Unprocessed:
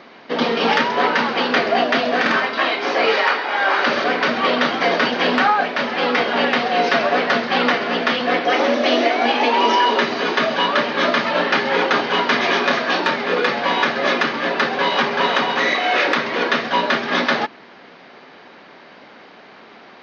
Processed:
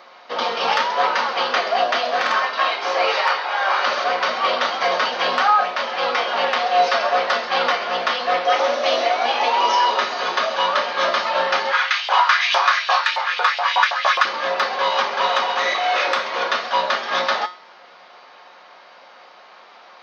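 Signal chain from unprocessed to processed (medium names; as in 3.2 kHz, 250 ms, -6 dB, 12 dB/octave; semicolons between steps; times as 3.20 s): high-order bell 800 Hz +9 dB; feedback comb 180 Hz, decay 0.4 s, harmonics all, mix 70%; 11.71–14.24 s: LFO high-pass saw up 1.4 Hz -> 8.8 Hz 650–3200 Hz; tilt EQ +4 dB/octave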